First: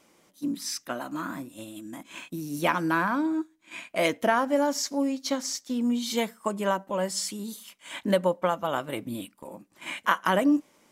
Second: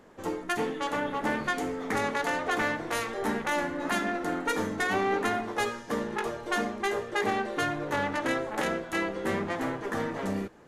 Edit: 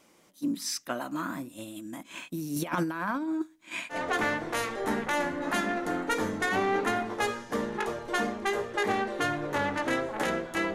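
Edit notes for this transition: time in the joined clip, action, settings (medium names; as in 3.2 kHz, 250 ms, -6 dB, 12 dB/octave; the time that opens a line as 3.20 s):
first
2.56–4.01 s: compressor with a negative ratio -29 dBFS, ratio -0.5
3.95 s: go over to second from 2.33 s, crossfade 0.12 s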